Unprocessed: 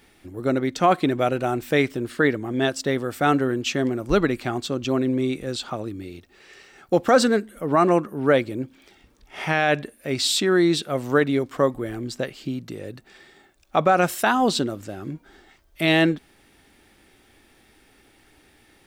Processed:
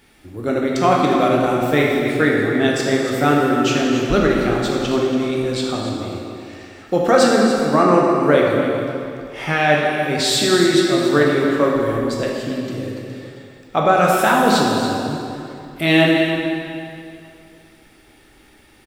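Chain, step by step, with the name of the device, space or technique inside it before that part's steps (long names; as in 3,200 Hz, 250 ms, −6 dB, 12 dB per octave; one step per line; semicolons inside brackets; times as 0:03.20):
cave (single-tap delay 283 ms −11.5 dB; convolution reverb RT60 2.6 s, pre-delay 10 ms, DRR −2.5 dB)
0:07.81–0:08.23: low-pass filter 9,400 Hz 12 dB per octave
level +1 dB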